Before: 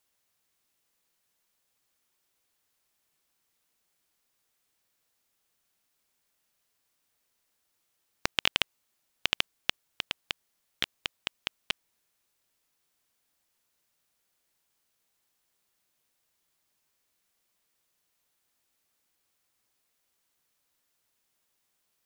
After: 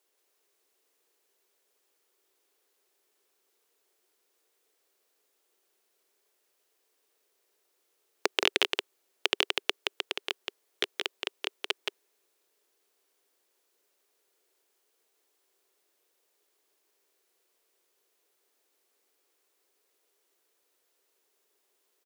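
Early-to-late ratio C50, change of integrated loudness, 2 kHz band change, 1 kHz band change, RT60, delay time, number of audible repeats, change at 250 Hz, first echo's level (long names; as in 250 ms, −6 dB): no reverb audible, +1.5 dB, +2.0 dB, +3.0 dB, no reverb audible, 173 ms, 1, +4.5 dB, −3.5 dB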